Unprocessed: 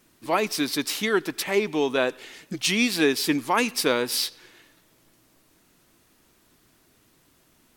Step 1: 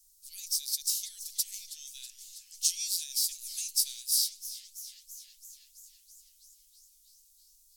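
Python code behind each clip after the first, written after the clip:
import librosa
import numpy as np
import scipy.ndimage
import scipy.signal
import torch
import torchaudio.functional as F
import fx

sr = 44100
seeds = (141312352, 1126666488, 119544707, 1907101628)

y = x + 10.0 ** (-52.0 / 20.0) * np.sin(2.0 * np.pi * 1400.0 * np.arange(len(x)) / sr)
y = scipy.signal.sosfilt(scipy.signal.cheby2(4, 80, [150.0, 1100.0], 'bandstop', fs=sr, output='sos'), y)
y = fx.echo_warbled(y, sr, ms=328, feedback_pct=74, rate_hz=2.8, cents=162, wet_db=-15)
y = y * 10.0 ** (3.0 / 20.0)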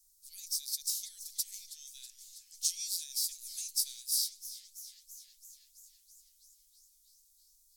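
y = fx.peak_eq(x, sr, hz=2800.0, db=-6.5, octaves=0.34)
y = y * 10.0 ** (-4.0 / 20.0)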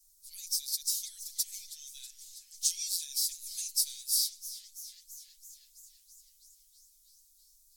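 y = x + 0.91 * np.pad(x, (int(5.9 * sr / 1000.0), 0))[:len(x)]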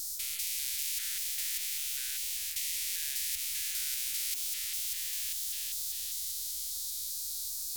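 y = fx.spec_steps(x, sr, hold_ms=200)
y = fx.high_shelf(y, sr, hz=5600.0, db=10.5)
y = fx.spectral_comp(y, sr, ratio=10.0)
y = y * 10.0 ** (-5.0 / 20.0)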